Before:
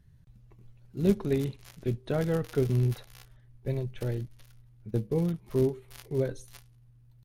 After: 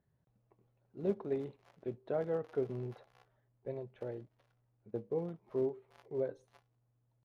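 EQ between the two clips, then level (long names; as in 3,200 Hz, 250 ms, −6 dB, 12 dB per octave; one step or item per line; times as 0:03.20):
resonant band-pass 650 Hz, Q 1.2
−2.5 dB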